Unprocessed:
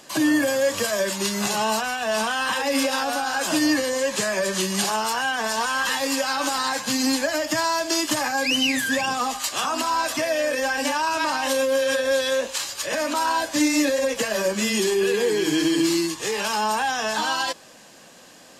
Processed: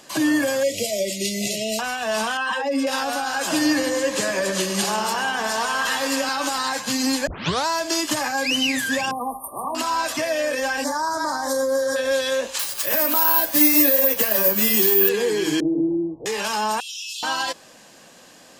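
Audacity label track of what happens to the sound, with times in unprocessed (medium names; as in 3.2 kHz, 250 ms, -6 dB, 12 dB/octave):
0.630000	1.790000	brick-wall FIR band-stop 720–1900 Hz
2.370000	2.870000	spectral contrast enhancement exponent 1.6
3.370000	6.290000	filtered feedback delay 103 ms, feedback 73%, low-pass 4.1 kHz, level -9 dB
7.270000	7.270000	tape start 0.40 s
9.110000	9.750000	brick-wall FIR band-stop 1.2–8.8 kHz
10.840000	11.960000	Butterworth band-stop 2.7 kHz, Q 0.92
12.590000	15.090000	careless resampling rate divided by 3×, down filtered, up zero stuff
15.600000	16.260000	steep low-pass 740 Hz 48 dB/octave
16.800000	17.230000	Chebyshev high-pass 2.6 kHz, order 8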